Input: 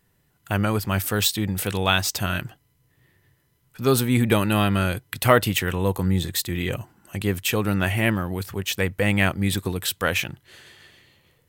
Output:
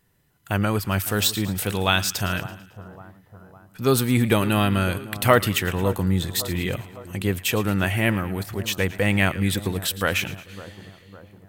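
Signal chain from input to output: split-band echo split 1300 Hz, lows 0.556 s, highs 0.111 s, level -15.5 dB

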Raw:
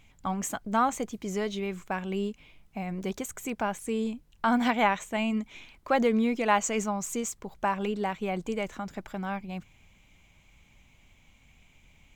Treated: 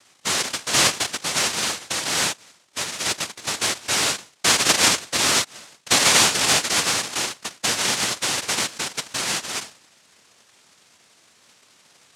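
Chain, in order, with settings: minimum comb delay 0.53 ms; notches 60/120/180/240/300 Hz; noise vocoder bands 1; gain +8.5 dB

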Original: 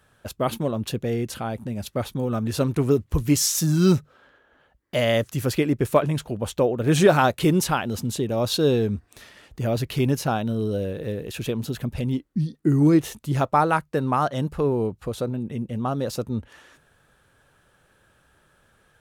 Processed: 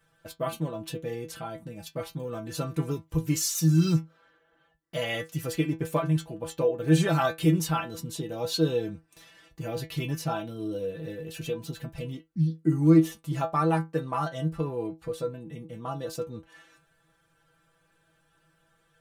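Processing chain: metallic resonator 160 Hz, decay 0.21 s, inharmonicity 0.002; gain +4 dB

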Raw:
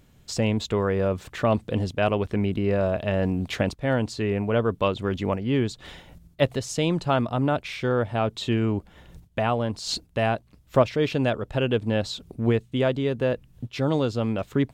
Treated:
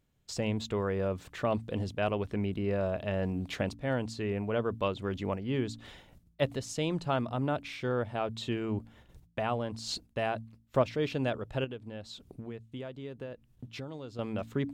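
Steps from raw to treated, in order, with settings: gate -48 dBFS, range -10 dB; 11.64–14.19 compressor 6:1, threshold -31 dBFS, peak gain reduction 13.5 dB; de-hum 56.38 Hz, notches 5; gain -7.5 dB

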